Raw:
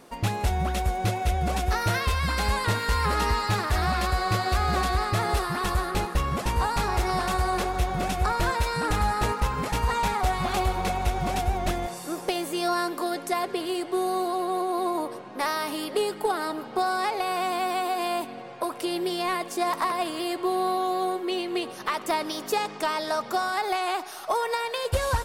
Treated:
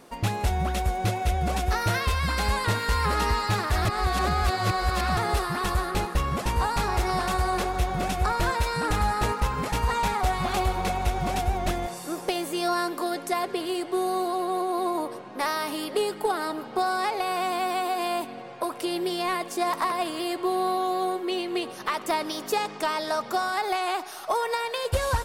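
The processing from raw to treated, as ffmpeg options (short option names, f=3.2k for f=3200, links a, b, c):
-filter_complex "[0:a]asplit=3[a][b][c];[a]atrim=end=3.852[d];[b]atrim=start=3.848:end=5.172,asetpts=PTS-STARTPTS,areverse[e];[c]atrim=start=5.168[f];[d][e]acrossfade=d=0.004:c1=hsin:c2=hsin[g];[g][f]acrossfade=d=0.004:c1=hsin:c2=hsin"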